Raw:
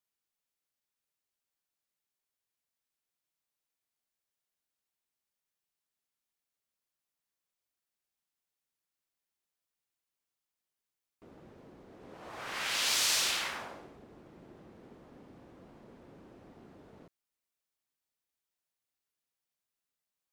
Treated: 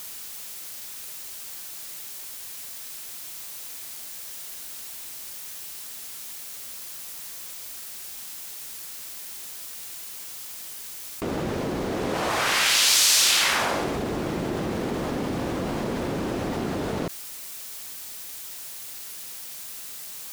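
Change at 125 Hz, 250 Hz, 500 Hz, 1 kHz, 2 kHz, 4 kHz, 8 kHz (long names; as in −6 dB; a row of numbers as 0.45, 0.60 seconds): +25.0, +24.5, +21.5, +15.5, +12.0, +11.5, +13.5 decibels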